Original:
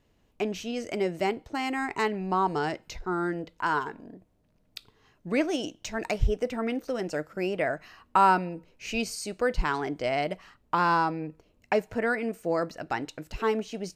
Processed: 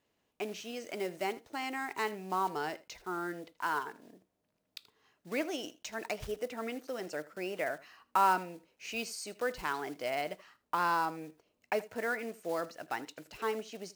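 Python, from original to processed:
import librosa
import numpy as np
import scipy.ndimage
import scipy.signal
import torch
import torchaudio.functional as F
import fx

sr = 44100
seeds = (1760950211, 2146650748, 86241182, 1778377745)

y = fx.block_float(x, sr, bits=5)
y = fx.highpass(y, sr, hz=410.0, slope=6)
y = y + 10.0 ** (-19.0 / 20.0) * np.pad(y, (int(80 * sr / 1000.0), 0))[:len(y)]
y = y * librosa.db_to_amplitude(-5.5)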